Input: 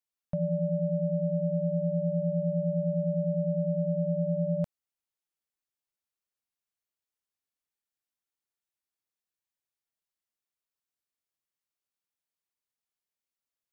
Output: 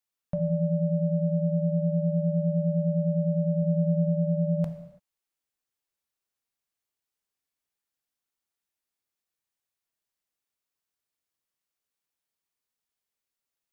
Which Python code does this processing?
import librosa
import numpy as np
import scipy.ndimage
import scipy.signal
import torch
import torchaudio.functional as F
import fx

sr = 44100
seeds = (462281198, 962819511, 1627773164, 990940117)

y = fx.low_shelf(x, sr, hz=200.0, db=3.0, at=(3.62, 4.09))
y = fx.rev_gated(y, sr, seeds[0], gate_ms=360, shape='falling', drr_db=7.0)
y = y * 10.0 ** (2.5 / 20.0)